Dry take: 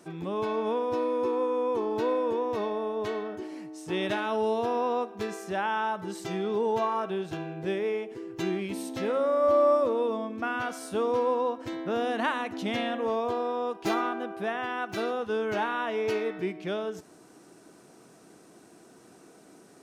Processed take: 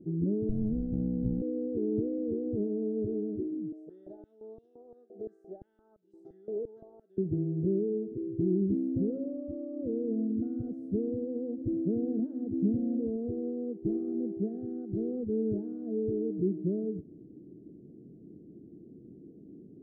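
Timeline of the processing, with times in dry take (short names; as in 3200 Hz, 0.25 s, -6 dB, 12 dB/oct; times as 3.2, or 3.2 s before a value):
0.49–1.42 minimum comb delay 1.3 ms
3.72–7.18 stepped high-pass 5.8 Hz 620–2700 Hz
whole clip: limiter -23.5 dBFS; inverse Chebyshev low-pass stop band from 940 Hz, stop band 50 dB; low shelf 160 Hz +7 dB; gain +5 dB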